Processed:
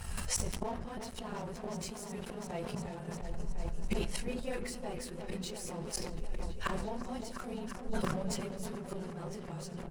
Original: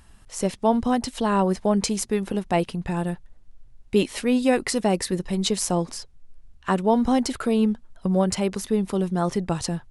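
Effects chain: phase randomisation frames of 50 ms; treble shelf 5.9 kHz +2.5 dB; band-stop 3.5 kHz, Q 10; doubling 12 ms -11 dB; inverted gate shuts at -22 dBFS, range -30 dB; peaking EQ 290 Hz -12.5 dB 0.26 oct; reverberation RT60 1.1 s, pre-delay 6 ms, DRR 16 dB; in parallel at -7 dB: integer overflow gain 24.5 dB; on the sum: compression 5:1, threshold -39 dBFS, peak gain reduction 10 dB; on a send: delay with an opening low-pass 351 ms, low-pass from 750 Hz, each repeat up 1 oct, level -6 dB; on the sum: crossover distortion -59.5 dBFS; decay stretcher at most 31 dB/s; trim +8 dB

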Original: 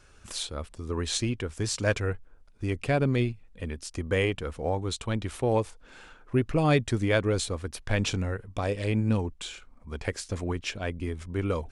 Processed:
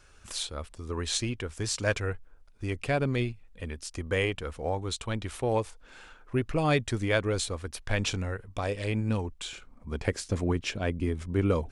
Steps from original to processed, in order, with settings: peaking EQ 200 Hz -4 dB 2.8 oct, from 9.53 s +4.5 dB

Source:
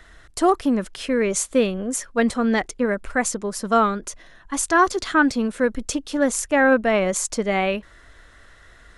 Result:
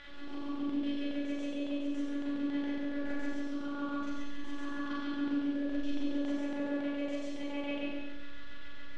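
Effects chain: spectral blur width 287 ms; reverb removal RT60 0.81 s; reverse; compression 6:1, threshold -41 dBFS, peak gain reduction 20.5 dB; reverse; robot voice 284 Hz; added noise white -61 dBFS; LFO low-pass square 7.2 Hz 330–3300 Hz; distance through air 50 m; Schroeder reverb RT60 1.2 s, combs from 30 ms, DRR -5 dB

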